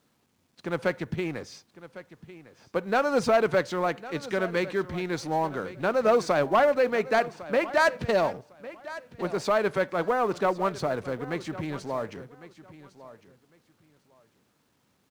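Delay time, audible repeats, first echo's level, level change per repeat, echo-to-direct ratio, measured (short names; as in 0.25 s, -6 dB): 1.104 s, 2, -16.5 dB, -14.0 dB, -16.5 dB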